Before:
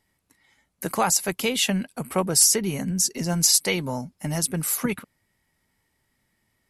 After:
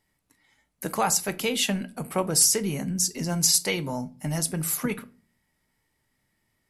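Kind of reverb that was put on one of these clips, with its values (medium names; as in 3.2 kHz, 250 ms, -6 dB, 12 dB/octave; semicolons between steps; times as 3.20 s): simulated room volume 240 m³, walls furnished, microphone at 0.44 m; trim -2.5 dB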